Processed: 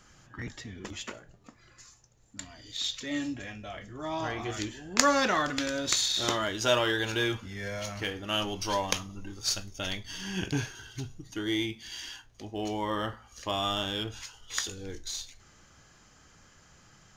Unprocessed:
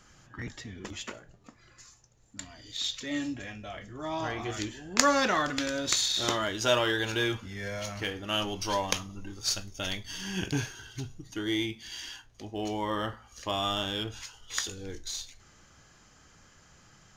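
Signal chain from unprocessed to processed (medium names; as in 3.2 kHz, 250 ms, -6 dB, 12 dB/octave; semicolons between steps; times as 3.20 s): 9.78–10.75 s: treble shelf 7.6 kHz -4.5 dB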